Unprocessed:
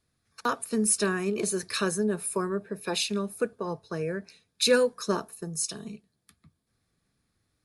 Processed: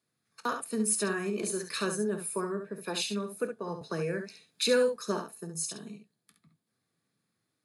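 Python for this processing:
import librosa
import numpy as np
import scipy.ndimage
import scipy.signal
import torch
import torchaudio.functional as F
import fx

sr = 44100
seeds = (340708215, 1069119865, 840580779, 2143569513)

y = scipy.signal.sosfilt(scipy.signal.butter(4, 130.0, 'highpass', fs=sr, output='sos'), x)
y = fx.notch(y, sr, hz=5600.0, q=16.0)
y = fx.room_early_taps(y, sr, ms=(24, 50, 68), db=(-15.0, -15.5, -7.5))
y = fx.band_squash(y, sr, depth_pct=40, at=(3.81, 4.96))
y = F.gain(torch.from_numpy(y), -4.5).numpy()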